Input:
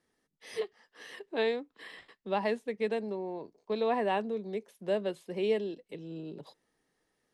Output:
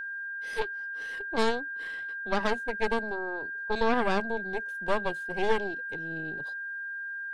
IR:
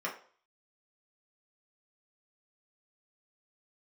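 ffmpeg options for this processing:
-af "aeval=exprs='0.126*(cos(1*acos(clip(val(0)/0.126,-1,1)))-cos(1*PI/2))+0.0562*(cos(4*acos(clip(val(0)/0.126,-1,1)))-cos(4*PI/2))':c=same,aeval=exprs='val(0)+0.02*sin(2*PI*1600*n/s)':c=same"

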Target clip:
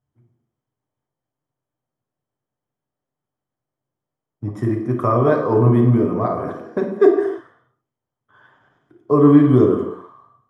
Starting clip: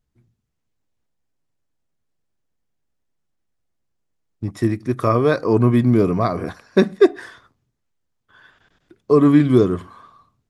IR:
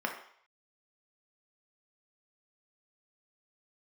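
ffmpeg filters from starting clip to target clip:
-filter_complex "[0:a]asettb=1/sr,asplit=3[a][b][c];[a]atrim=end=5.974[d];[b]atrim=start=5.97:end=6.99,asetpts=PTS-STARTPTS,afade=t=in:d=0.004:c=qsin,afade=t=out:st=1.016:d=0.004:c=qsin,acompressor=threshold=-16dB:ratio=6[e];[c]atrim=start=6.986[f];[d][e]acrossfade=d=0.004:c1=hsin:c2=qsin[g];[g][f]acrossfade=d=0.004:c1=qsin:c2=hsin[h];[1:a]atrim=start_sample=2205,afade=t=out:st=0.25:d=0.01,atrim=end_sample=11466,asetrate=26019,aresample=44100[i];[h][i]afir=irnorm=-1:irlink=0,volume=-9.5dB"

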